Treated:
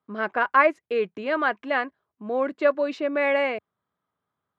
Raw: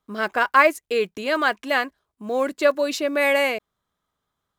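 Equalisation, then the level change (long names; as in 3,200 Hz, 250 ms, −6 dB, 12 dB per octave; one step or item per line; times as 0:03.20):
high-pass filter 90 Hz 24 dB per octave
low-pass filter 2,200 Hz 12 dB per octave
−2.0 dB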